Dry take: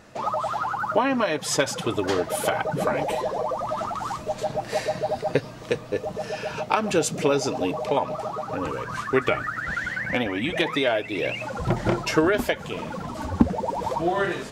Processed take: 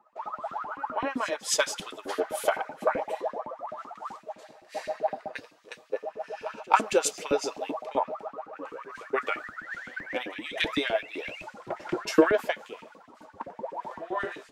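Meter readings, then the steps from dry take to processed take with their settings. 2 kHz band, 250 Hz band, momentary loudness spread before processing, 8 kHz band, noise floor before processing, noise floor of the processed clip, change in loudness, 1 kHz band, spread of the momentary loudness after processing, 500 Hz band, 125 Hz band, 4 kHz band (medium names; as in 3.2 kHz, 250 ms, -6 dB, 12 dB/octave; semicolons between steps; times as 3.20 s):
-5.5 dB, -8.0 dB, 8 LU, -2.0 dB, -39 dBFS, -56 dBFS, -5.0 dB, -4.5 dB, 15 LU, -5.5 dB, -19.5 dB, -4.5 dB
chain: reverse echo 273 ms -13.5 dB; LFO high-pass saw up 7.8 Hz 220–2500 Hz; three bands expanded up and down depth 100%; trim -9 dB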